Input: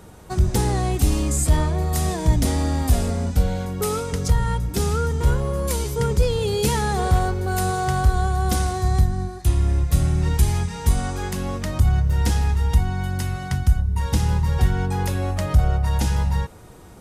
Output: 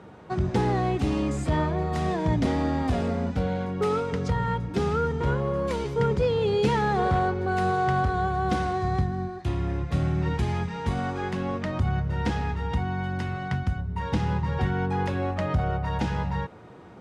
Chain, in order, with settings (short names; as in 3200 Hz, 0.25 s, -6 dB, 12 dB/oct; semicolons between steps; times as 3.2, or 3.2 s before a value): BPF 130–2700 Hz